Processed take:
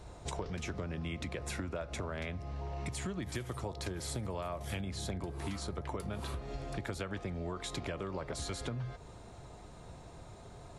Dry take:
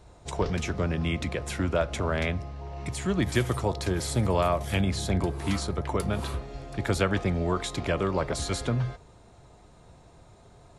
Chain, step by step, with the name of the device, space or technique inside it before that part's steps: serial compression, peaks first (compressor, threshold -35 dBFS, peak gain reduction 15 dB; compressor 1.5:1, threshold -43 dBFS, peak gain reduction 4.5 dB); 1.38–2.02 notch 3100 Hz, Q 12; gain +2.5 dB

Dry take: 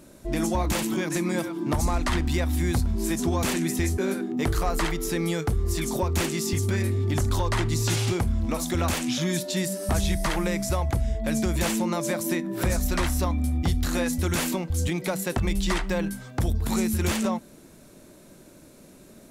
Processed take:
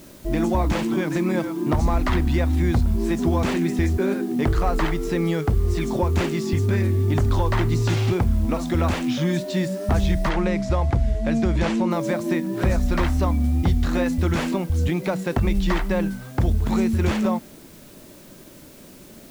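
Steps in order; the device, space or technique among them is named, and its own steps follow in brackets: cassette deck with a dirty head (tape spacing loss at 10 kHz 20 dB; wow and flutter; white noise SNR 29 dB); 10.29–11.91 LPF 7100 Hz 12 dB/oct; gain +5 dB

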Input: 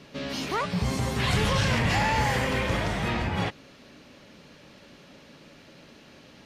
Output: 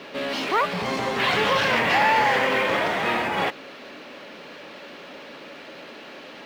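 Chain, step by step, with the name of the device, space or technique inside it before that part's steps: phone line with mismatched companding (BPF 370–3400 Hz; G.711 law mismatch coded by mu); gain +6.5 dB

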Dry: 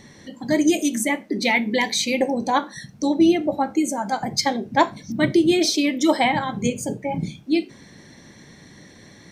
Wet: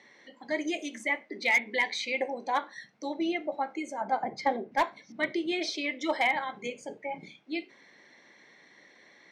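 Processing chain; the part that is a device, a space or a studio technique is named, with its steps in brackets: megaphone (BPF 480–3800 Hz; bell 2100 Hz +7 dB 0.25 oct; hard clip -10.5 dBFS, distortion -21 dB); 4.01–4.72 tilt shelf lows +9 dB, about 1400 Hz; gain -7.5 dB

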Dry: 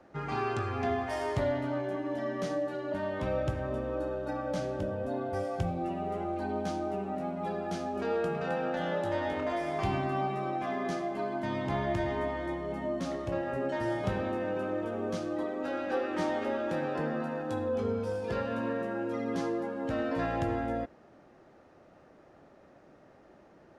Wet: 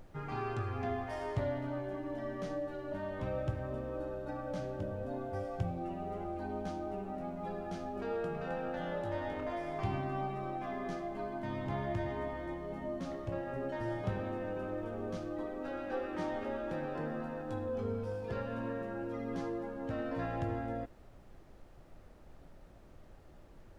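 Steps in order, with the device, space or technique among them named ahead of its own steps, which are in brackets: car interior (bell 110 Hz +5.5 dB 0.61 oct; high shelf 3700 Hz -6 dB; brown noise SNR 16 dB); gain -6 dB

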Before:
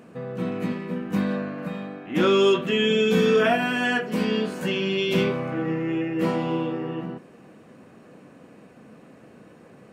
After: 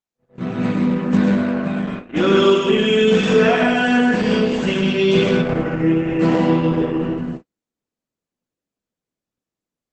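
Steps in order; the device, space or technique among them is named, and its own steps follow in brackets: speakerphone in a meeting room (reverb RT60 0.75 s, pre-delay 99 ms, DRR 1 dB; AGC gain up to 8 dB; gate -26 dBFS, range -52 dB; gain -1 dB; Opus 12 kbps 48000 Hz)

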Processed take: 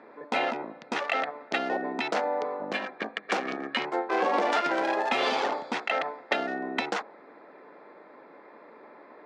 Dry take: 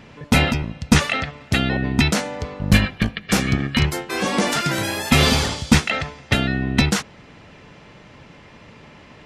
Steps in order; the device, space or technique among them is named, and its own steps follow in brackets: Wiener smoothing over 15 samples; AM radio (BPF 130–3600 Hz; compressor 6:1, threshold -22 dBFS, peak gain reduction 12.5 dB; soft clip -11 dBFS, distortion -25 dB); HPF 320 Hz 24 dB/oct; dynamic EQ 770 Hz, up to +7 dB, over -46 dBFS, Q 1.6

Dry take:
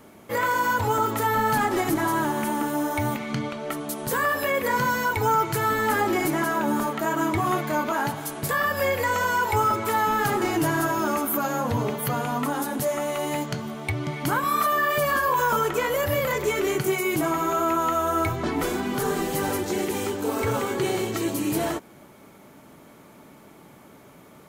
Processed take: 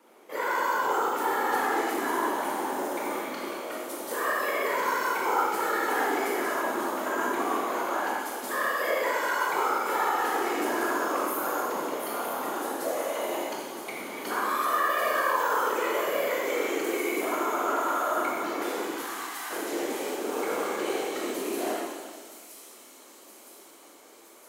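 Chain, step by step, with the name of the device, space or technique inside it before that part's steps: 18.91–19.51 steep high-pass 920 Hz; high shelf 9300 Hz -4.5 dB; thin delay 0.967 s, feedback 65%, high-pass 4700 Hz, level -7.5 dB; whispering ghost (whisperiser; HPF 290 Hz 24 dB/oct; reverb RT60 1.6 s, pre-delay 20 ms, DRR -4 dB); gain -8.5 dB

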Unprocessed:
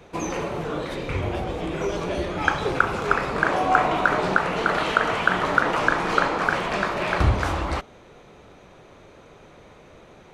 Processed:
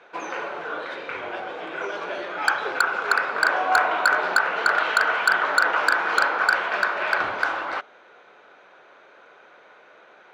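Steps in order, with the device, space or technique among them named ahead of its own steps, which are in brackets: megaphone (BPF 570–3600 Hz; bell 1500 Hz +11 dB 0.23 oct; hard clip -10.5 dBFS, distortion -6 dB)

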